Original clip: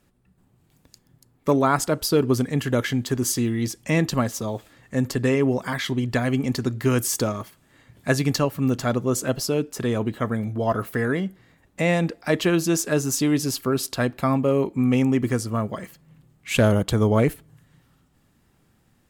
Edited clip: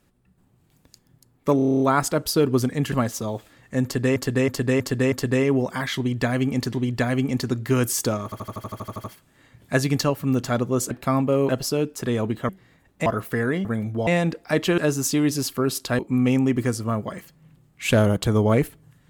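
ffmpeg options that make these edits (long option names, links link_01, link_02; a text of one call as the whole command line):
ffmpeg -i in.wav -filter_complex "[0:a]asplit=33[link_01][link_02][link_03][link_04][link_05][link_06][link_07][link_08][link_09][link_10][link_11][link_12][link_13][link_14][link_15][link_16][link_17][link_18][link_19][link_20][link_21][link_22][link_23][link_24][link_25][link_26][link_27][link_28][link_29][link_30][link_31][link_32][link_33];[link_01]atrim=end=1.592[link_34];[link_02]atrim=start=1.558:end=1.592[link_35];[link_03]atrim=start=1.558:end=1.592[link_36];[link_04]atrim=start=1.558:end=1.592[link_37];[link_05]atrim=start=1.558:end=1.592[link_38];[link_06]atrim=start=1.558:end=1.592[link_39];[link_07]atrim=start=1.558:end=1.592[link_40];[link_08]atrim=start=1.558:end=1.592[link_41];[link_09]atrim=start=1.558:end=2.682[link_42];[link_10]atrim=start=4.118:end=5.362[link_43];[link_11]atrim=start=5.038:end=5.362[link_44];[link_12]atrim=start=5.038:end=5.362[link_45];[link_13]atrim=start=5.038:end=5.362[link_46];[link_14]atrim=start=5.038:end=6.652[link_47];[link_15]atrim=start=5.878:end=7.472[link_48];[link_16]atrim=start=7.388:end=7.472[link_49];[link_17]atrim=start=7.388:end=7.472[link_50];[link_18]atrim=start=7.388:end=7.472[link_51];[link_19]atrim=start=7.388:end=7.472[link_52];[link_20]atrim=start=7.388:end=7.472[link_53];[link_21]atrim=start=7.388:end=7.472[link_54];[link_22]atrim=start=7.388:end=7.472[link_55];[link_23]atrim=start=7.388:end=7.472[link_56];[link_24]atrim=start=7.388:end=7.472[link_57];[link_25]atrim=start=7.388:end=9.262[link_58];[link_26]atrim=start=14.068:end=14.652[link_59];[link_27]atrim=start=9.258:end=10.262[link_60];[link_28]atrim=start=11.268:end=11.842[link_61];[link_29]atrim=start=10.678:end=11.272[link_62];[link_30]atrim=start=10.258:end=10.682[link_63];[link_31]atrim=start=11.838:end=12.552[link_64];[link_32]atrim=start=12.858:end=14.072[link_65];[link_33]atrim=start=14.648[link_66];[link_34][link_35]acrossfade=duration=0.004:curve1=hsin:curve2=hsin[link_67];[link_67][link_36]acrossfade=duration=0.004:curve1=hsin:curve2=hsin[link_68];[link_68][link_37]acrossfade=duration=0.004:curve1=hsin:curve2=hsin[link_69];[link_69][link_38]acrossfade=duration=0.004:curve1=hsin:curve2=hsin[link_70];[link_70][link_39]acrossfade=duration=0.004:curve1=hsin:curve2=hsin[link_71];[link_71][link_40]acrossfade=duration=0.004:curve1=hsin:curve2=hsin[link_72];[link_72][link_41]acrossfade=duration=0.004:curve1=hsin:curve2=hsin[link_73];[link_73][link_42]acrossfade=duration=0.004:curve1=hsin:curve2=hsin[link_74];[link_74][link_43]acrossfade=duration=0.004:curve1=hsin:curve2=hsin[link_75];[link_75][link_44]acrossfade=duration=0.004:curve1=hsin:curve2=hsin[link_76];[link_76][link_45]acrossfade=duration=0.004:curve1=hsin:curve2=hsin[link_77];[link_77][link_46]acrossfade=duration=0.004:curve1=hsin:curve2=hsin[link_78];[link_78][link_47]acrossfade=duration=0.004:curve1=hsin:curve2=hsin[link_79];[link_79][link_48]acrossfade=duration=0.004:curve1=hsin:curve2=hsin[link_80];[link_80][link_49]acrossfade=duration=0.004:curve1=hsin:curve2=hsin[link_81];[link_81][link_50]acrossfade=duration=0.004:curve1=hsin:curve2=hsin[link_82];[link_82][link_51]acrossfade=duration=0.004:curve1=hsin:curve2=hsin[link_83];[link_83][link_52]acrossfade=duration=0.004:curve1=hsin:curve2=hsin[link_84];[link_84][link_53]acrossfade=duration=0.004:curve1=hsin:curve2=hsin[link_85];[link_85][link_54]acrossfade=duration=0.004:curve1=hsin:curve2=hsin[link_86];[link_86][link_55]acrossfade=duration=0.004:curve1=hsin:curve2=hsin[link_87];[link_87][link_56]acrossfade=duration=0.004:curve1=hsin:curve2=hsin[link_88];[link_88][link_57]acrossfade=duration=0.004:curve1=hsin:curve2=hsin[link_89];[link_89][link_58]acrossfade=duration=0.004:curve1=hsin:curve2=hsin[link_90];[link_90][link_59]acrossfade=duration=0.004:curve1=hsin:curve2=hsin[link_91];[link_91][link_60]acrossfade=duration=0.004:curve1=hsin:curve2=hsin[link_92];[link_92][link_61]acrossfade=duration=0.004:curve1=hsin:curve2=hsin[link_93];[link_93][link_62]acrossfade=duration=0.004:curve1=hsin:curve2=hsin[link_94];[link_94][link_63]acrossfade=duration=0.004:curve1=hsin:curve2=hsin[link_95];[link_95][link_64]acrossfade=duration=0.004:curve1=hsin:curve2=hsin[link_96];[link_96][link_65]acrossfade=duration=0.004:curve1=hsin:curve2=hsin[link_97];[link_97][link_66]acrossfade=duration=0.004:curve1=hsin:curve2=hsin" out.wav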